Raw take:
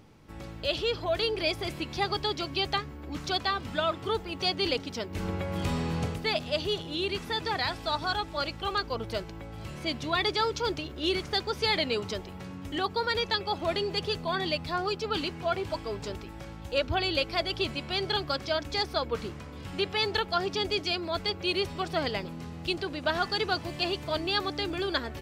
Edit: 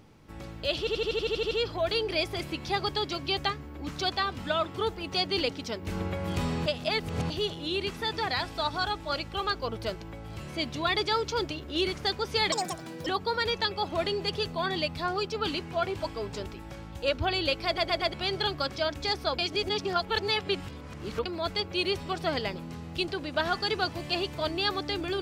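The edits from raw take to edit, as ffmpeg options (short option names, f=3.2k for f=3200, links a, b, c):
-filter_complex "[0:a]asplit=20[a][b][c][d][e][f][g][h][i][j][k][l][m][n][o][p][q][r][s][t];[a]atrim=end=0.872[u];[b]atrim=start=0.788:end=0.872[v];[c]atrim=start=0.788:end=0.872[w];[d]atrim=start=0.788:end=0.872[x];[e]atrim=start=0.788:end=0.872[y];[f]atrim=start=0.788:end=0.872[z];[g]atrim=start=0.788:end=0.872[aa];[h]atrim=start=0.788:end=0.872[ab];[i]atrim=start=0.788:end=0.872[ac];[j]atrim=start=0.788:end=5.942[ad];[k]atrim=start=5.938:end=6.582,asetpts=PTS-STARTPTS,areverse[ae];[l]atrim=start=6.578:end=11.804[af];[m]atrim=start=11.8:end=12.76,asetpts=PTS-STARTPTS,asetrate=77616,aresample=44100[ag];[n]atrim=start=12.756:end=17.472[ah];[o]atrim=start=17.348:end=17.472[ai];[p]atrim=start=17.348:end=17.472[aj];[q]atrim=start=17.348:end=17.472[ak];[r]atrim=start=17.828:end=19.082[al];[s]atrim=start=19.078:end=20.952,asetpts=PTS-STARTPTS,areverse[am];[t]atrim=start=20.948[an];[u][v]acrossfade=d=0.004:c1=hsin:c2=hsin[ao];[ao][w]acrossfade=d=0.004:c1=hsin:c2=hsin[ap];[ap][x]acrossfade=d=0.004:c1=hsin:c2=hsin[aq];[aq][y]acrossfade=d=0.004:c1=hsin:c2=hsin[ar];[ar][z]acrossfade=d=0.004:c1=hsin:c2=hsin[as];[as][aa]acrossfade=d=0.004:c1=hsin:c2=hsin[at];[at][ab]acrossfade=d=0.004:c1=hsin:c2=hsin[au];[au][ac]acrossfade=d=0.004:c1=hsin:c2=hsin[av];[av][ad]acrossfade=d=0.004:c1=hsin:c2=hsin[aw];[aw][ae]acrossfade=d=0.004:c1=hsin:c2=hsin[ax];[ax][af]acrossfade=d=0.004:c1=hsin:c2=hsin[ay];[ay][ag]acrossfade=d=0.004:c1=hsin:c2=hsin[az];[az][ah]acrossfade=d=0.004:c1=hsin:c2=hsin[ba];[ba][ai]acrossfade=d=0.004:c1=hsin:c2=hsin[bb];[bb][aj]acrossfade=d=0.004:c1=hsin:c2=hsin[bc];[bc][ak]acrossfade=d=0.004:c1=hsin:c2=hsin[bd];[bd][al]acrossfade=d=0.004:c1=hsin:c2=hsin[be];[be][am]acrossfade=d=0.004:c1=hsin:c2=hsin[bf];[bf][an]acrossfade=d=0.004:c1=hsin:c2=hsin"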